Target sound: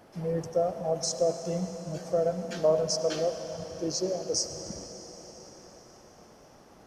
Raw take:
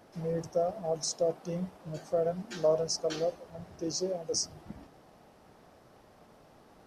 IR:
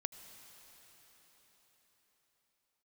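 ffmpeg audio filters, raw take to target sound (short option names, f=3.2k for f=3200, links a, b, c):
-filter_complex "[0:a]bandreject=f=3.8k:w=20[a];[1:a]atrim=start_sample=2205[b];[a][b]afir=irnorm=-1:irlink=0,volume=4.5dB"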